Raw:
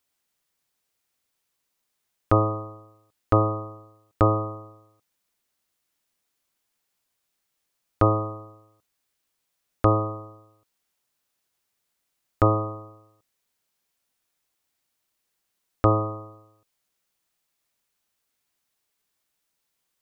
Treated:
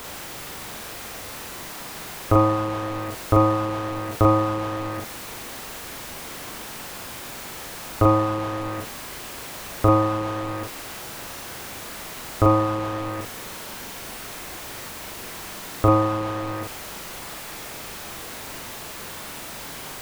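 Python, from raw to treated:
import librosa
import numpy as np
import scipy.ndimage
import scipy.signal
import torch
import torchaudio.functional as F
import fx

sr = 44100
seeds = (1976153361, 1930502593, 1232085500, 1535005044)

y = x + 0.5 * 10.0 ** (-23.5 / 20.0) * np.sign(x)
y = fx.high_shelf(y, sr, hz=2500.0, db=-11.5)
y = fx.doubler(y, sr, ms=41.0, db=-2.5)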